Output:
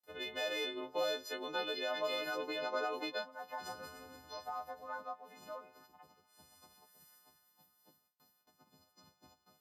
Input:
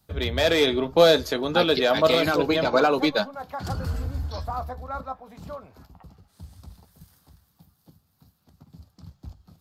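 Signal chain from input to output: partials quantised in pitch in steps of 3 st; compression 2:1, threshold -34 dBFS, peak gain reduction 12.5 dB; high-pass 370 Hz 12 dB/octave; treble shelf 3.7 kHz -11 dB; gate with hold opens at -57 dBFS; trim -6.5 dB

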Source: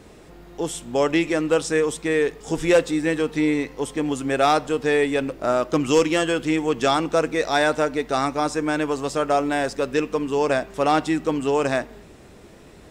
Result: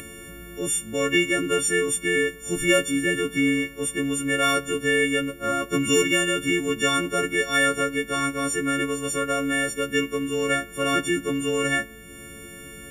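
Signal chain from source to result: partials quantised in pitch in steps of 4 st; static phaser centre 2 kHz, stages 4; upward compressor, threshold -33 dBFS

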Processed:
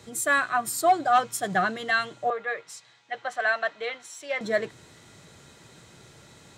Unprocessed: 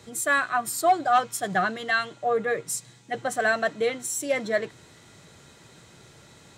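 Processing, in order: 2.30–4.41 s: three-band isolator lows -20 dB, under 590 Hz, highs -21 dB, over 5 kHz

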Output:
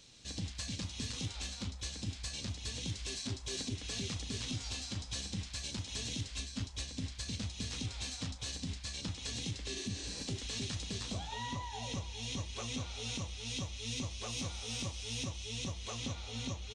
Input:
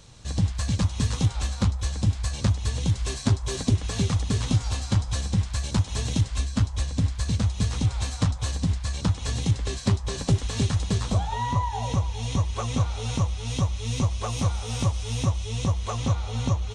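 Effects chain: pre-emphasis filter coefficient 0.97; spectral replace 9.78–10.19 s, 270–9200 Hz both; FFT filter 140 Hz 0 dB, 260 Hz +7 dB, 1.1 kHz -12 dB, 2.5 kHz -7 dB, 5.1 kHz -12 dB, 11 kHz -26 dB; peak limiter -41.5 dBFS, peak gain reduction 9.5 dB; doubling 35 ms -13 dB; trim +12.5 dB

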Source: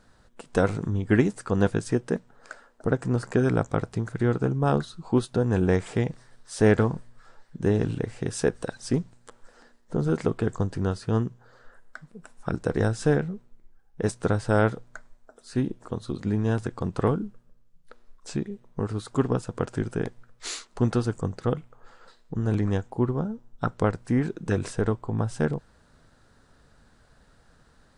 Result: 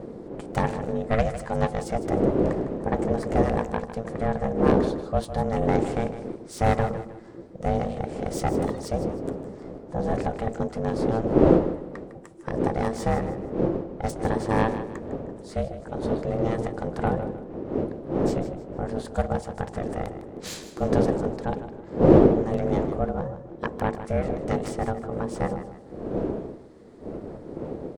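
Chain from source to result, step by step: self-modulated delay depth 0.15 ms; wind noise 180 Hz -26 dBFS; de-hum 56.81 Hz, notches 13; ring modulator 340 Hz; on a send: feedback delay 155 ms, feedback 34%, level -12 dB; on the sum: trim +1 dB

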